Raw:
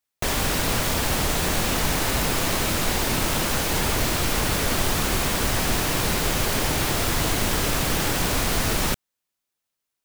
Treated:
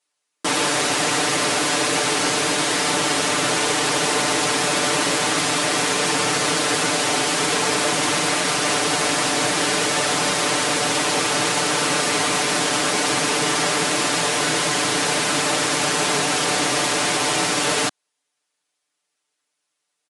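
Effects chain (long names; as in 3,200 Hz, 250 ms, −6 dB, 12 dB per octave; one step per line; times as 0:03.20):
high-pass filter 540 Hz 12 dB per octave
comb filter 3.4 ms, depth 90%
wrong playback speed 15 ips tape played at 7.5 ips
level +3 dB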